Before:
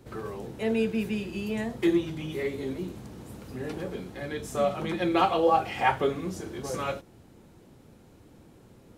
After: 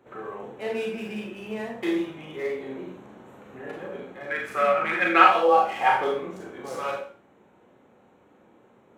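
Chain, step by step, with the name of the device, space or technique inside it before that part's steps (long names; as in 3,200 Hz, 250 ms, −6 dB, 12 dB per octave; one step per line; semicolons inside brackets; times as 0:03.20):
adaptive Wiener filter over 9 samples
filter by subtraction (in parallel: low-pass filter 830 Hz 12 dB per octave + polarity inversion)
0:04.30–0:05.24: on the sum: flat-topped bell 1,800 Hz +13 dB 1.3 octaves
four-comb reverb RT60 0.43 s, combs from 30 ms, DRR −0.5 dB
level −1 dB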